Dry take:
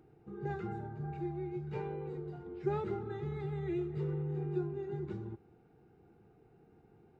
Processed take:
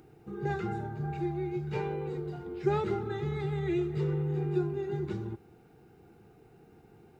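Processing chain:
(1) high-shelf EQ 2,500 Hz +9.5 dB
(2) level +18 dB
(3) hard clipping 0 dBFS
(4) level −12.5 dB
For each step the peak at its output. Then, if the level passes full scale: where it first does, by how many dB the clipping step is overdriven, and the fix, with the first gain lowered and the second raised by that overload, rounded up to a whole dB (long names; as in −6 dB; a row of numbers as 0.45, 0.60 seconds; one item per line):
−21.5, −3.5, −3.5, −16.0 dBFS
no step passes full scale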